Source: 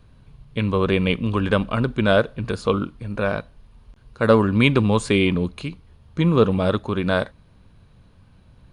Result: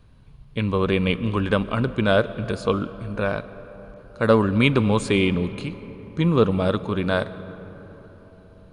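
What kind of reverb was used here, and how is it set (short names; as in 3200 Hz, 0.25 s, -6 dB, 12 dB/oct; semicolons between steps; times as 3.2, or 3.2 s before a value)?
digital reverb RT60 4.7 s, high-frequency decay 0.35×, pre-delay 85 ms, DRR 15 dB; gain -1.5 dB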